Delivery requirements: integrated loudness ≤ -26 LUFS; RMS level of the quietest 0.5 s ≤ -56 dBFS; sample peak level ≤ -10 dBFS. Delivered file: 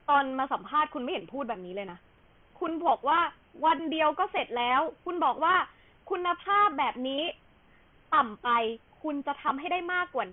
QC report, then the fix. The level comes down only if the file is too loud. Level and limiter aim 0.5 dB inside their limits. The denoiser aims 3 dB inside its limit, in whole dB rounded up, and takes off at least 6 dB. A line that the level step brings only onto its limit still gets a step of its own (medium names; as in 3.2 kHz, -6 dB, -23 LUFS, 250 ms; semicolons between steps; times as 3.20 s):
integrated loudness -28.5 LUFS: pass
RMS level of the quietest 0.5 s -60 dBFS: pass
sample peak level -12.5 dBFS: pass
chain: none needed